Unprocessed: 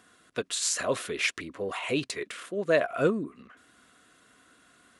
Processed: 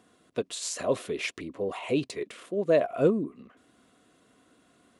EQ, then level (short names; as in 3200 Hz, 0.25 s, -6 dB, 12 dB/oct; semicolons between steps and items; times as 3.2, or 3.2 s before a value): low shelf 64 Hz -9.5 dB; bell 1500 Hz -9.5 dB 0.94 oct; high shelf 2100 Hz -10 dB; +3.5 dB